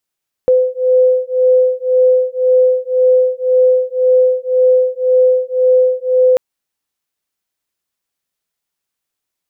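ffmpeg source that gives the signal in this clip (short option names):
-f lavfi -i "aevalsrc='0.251*(sin(2*PI*508*t)+sin(2*PI*509.9*t))':d=5.89:s=44100"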